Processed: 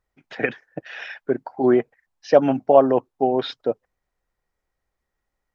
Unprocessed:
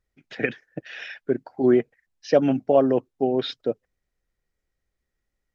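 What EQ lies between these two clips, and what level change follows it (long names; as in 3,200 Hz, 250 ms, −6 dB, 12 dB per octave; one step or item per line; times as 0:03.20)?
parametric band 920 Hz +11 dB 1.3 octaves
−1.0 dB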